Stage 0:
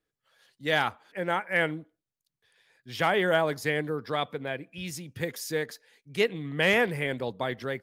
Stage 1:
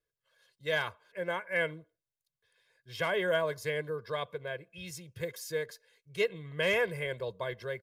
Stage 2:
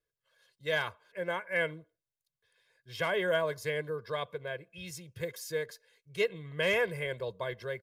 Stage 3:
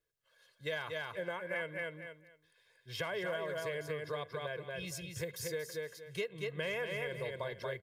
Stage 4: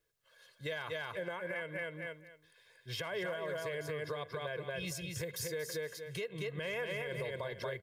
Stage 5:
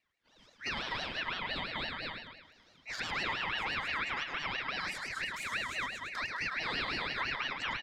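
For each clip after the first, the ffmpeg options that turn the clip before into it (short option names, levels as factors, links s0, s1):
-af "aecho=1:1:1.9:0.88,volume=0.398"
-af anull
-af "aecho=1:1:232|464|696:0.562|0.107|0.0203,acompressor=threshold=0.0141:ratio=4,volume=1.12"
-af "alimiter=level_in=3.35:limit=0.0631:level=0:latency=1:release=160,volume=0.299,volume=1.78"
-af "adynamicsmooth=sensitivity=4:basefreq=4100,aecho=1:1:106|212|318|424|530|636:0.501|0.246|0.12|0.059|0.0289|0.0142,aeval=exprs='val(0)*sin(2*PI*1900*n/s+1900*0.25/5.9*sin(2*PI*5.9*n/s))':c=same,volume=1.78"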